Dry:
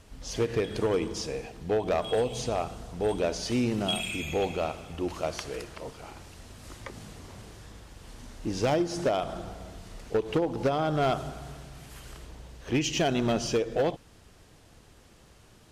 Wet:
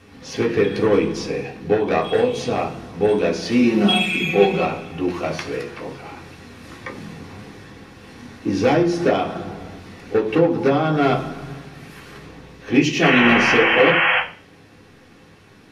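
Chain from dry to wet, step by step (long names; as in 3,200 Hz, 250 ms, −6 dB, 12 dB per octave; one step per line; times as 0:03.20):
0:03.62–0:04.65: comb filter 5.4 ms, depth 79%
0:13.02–0:14.21: sound drawn into the spectrogram noise 490–3,300 Hz −27 dBFS
convolution reverb RT60 0.50 s, pre-delay 3 ms, DRR −2.5 dB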